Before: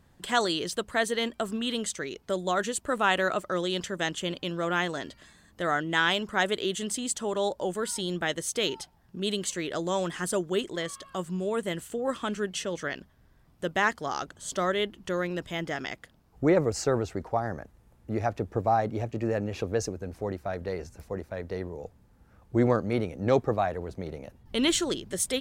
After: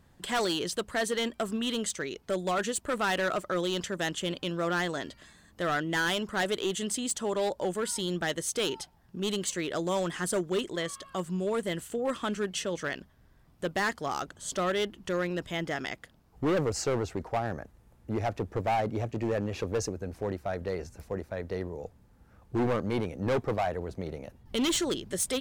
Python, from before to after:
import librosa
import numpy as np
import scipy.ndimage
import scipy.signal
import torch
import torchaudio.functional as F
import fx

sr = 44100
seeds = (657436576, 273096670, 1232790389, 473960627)

y = np.clip(x, -10.0 ** (-23.5 / 20.0), 10.0 ** (-23.5 / 20.0))